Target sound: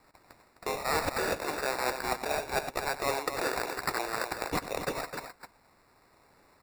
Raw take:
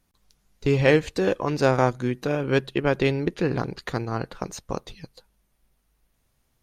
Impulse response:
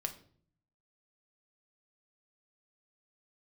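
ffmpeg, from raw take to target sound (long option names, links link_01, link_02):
-af "highpass=frequency=390:width=0.5412,highpass=frequency=390:width=1.3066,highshelf=frequency=1500:width_type=q:width=3:gain=12,areverse,acompressor=threshold=-26dB:ratio=8,areverse,acrusher=samples=14:mix=1:aa=0.000001,asoftclip=type=tanh:threshold=-18dB,aecho=1:1:93|258:0.2|0.376"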